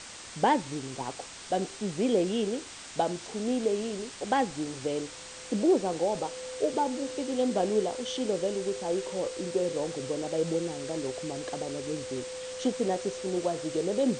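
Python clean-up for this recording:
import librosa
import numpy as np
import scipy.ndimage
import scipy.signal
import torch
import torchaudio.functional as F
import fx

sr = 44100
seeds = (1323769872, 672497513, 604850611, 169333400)

y = fx.notch(x, sr, hz=510.0, q=30.0)
y = fx.noise_reduce(y, sr, print_start_s=5.02, print_end_s=5.52, reduce_db=30.0)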